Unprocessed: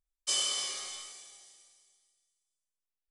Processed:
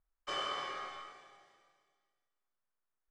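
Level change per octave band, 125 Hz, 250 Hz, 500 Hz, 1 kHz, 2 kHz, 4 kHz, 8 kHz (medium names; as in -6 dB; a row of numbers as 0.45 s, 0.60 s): no reading, +4.5 dB, +5.0 dB, +8.5 dB, +1.5 dB, -9.5 dB, -24.5 dB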